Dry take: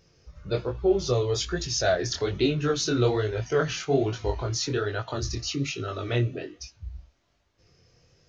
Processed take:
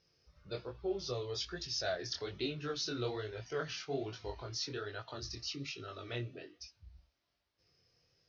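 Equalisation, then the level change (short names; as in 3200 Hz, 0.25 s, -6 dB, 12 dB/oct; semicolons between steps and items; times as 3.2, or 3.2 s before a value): band-pass 5300 Hz, Q 3; air absorption 180 m; tilt -4.5 dB/oct; +12.5 dB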